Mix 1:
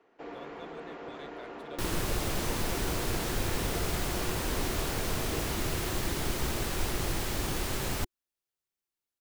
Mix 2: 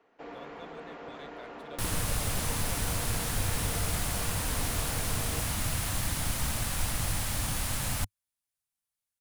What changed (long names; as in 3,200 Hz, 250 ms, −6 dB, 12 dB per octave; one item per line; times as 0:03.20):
second sound: add graphic EQ with 15 bands 100 Hz +5 dB, 400 Hz −11 dB, 10,000 Hz +8 dB
master: add parametric band 360 Hz −7 dB 0.3 octaves